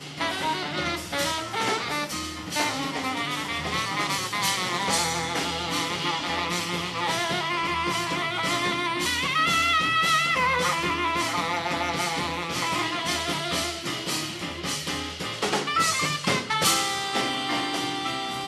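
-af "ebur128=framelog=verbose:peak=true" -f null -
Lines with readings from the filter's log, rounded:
Integrated loudness:
  I:         -25.2 LUFS
  Threshold: -35.2 LUFS
Loudness range:
  LRA:         4.5 LU
  Threshold: -45.1 LUFS
  LRA low:   -27.1 LUFS
  LRA high:  -22.6 LUFS
True peak:
  Peak:       -8.8 dBFS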